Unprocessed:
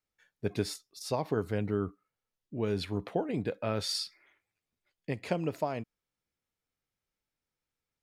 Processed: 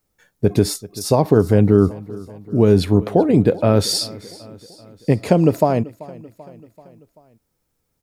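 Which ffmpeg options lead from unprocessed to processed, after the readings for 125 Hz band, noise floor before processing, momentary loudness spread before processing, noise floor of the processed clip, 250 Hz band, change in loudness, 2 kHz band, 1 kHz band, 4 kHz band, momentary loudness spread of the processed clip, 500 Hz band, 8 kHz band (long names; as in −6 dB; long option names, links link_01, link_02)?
+19.0 dB, below −85 dBFS, 9 LU, −72 dBFS, +18.5 dB, +17.0 dB, +9.0 dB, +14.5 dB, +12.0 dB, 14 LU, +17.0 dB, +16.0 dB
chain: -filter_complex "[0:a]equalizer=frequency=2500:width_type=o:width=2.7:gain=-11.5,asplit=2[link_01][link_02];[link_02]aecho=0:1:386|772|1158|1544:0.0891|0.0508|0.029|0.0165[link_03];[link_01][link_03]amix=inputs=2:normalize=0,alimiter=level_in=21dB:limit=-1dB:release=50:level=0:latency=1,volume=-1dB"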